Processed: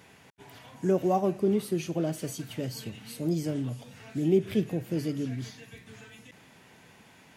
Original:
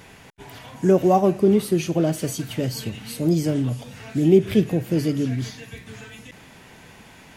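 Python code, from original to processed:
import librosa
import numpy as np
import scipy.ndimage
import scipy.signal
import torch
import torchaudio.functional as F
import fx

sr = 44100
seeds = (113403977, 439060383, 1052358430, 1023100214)

y = scipy.signal.sosfilt(scipy.signal.butter(2, 89.0, 'highpass', fs=sr, output='sos'), x)
y = y * librosa.db_to_amplitude(-8.5)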